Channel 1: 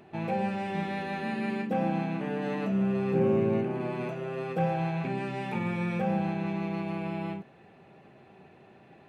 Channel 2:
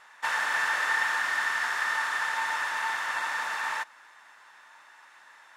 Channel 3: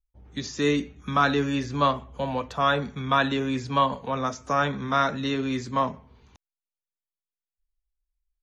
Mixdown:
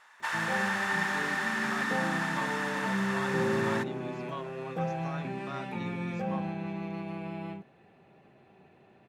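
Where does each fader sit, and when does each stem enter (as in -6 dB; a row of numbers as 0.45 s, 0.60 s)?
-4.5 dB, -4.0 dB, -19.0 dB; 0.20 s, 0.00 s, 0.55 s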